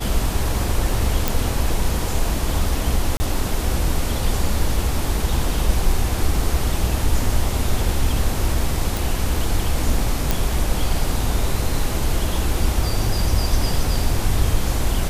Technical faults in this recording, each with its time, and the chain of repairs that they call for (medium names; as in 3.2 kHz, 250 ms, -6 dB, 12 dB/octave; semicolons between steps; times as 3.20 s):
1.28 s: pop
3.17–3.20 s: dropout 30 ms
8.97 s: pop
10.31 s: pop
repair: de-click; interpolate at 3.17 s, 30 ms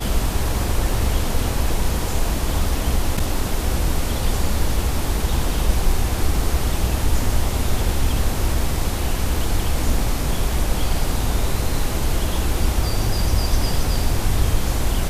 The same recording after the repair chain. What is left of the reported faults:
nothing left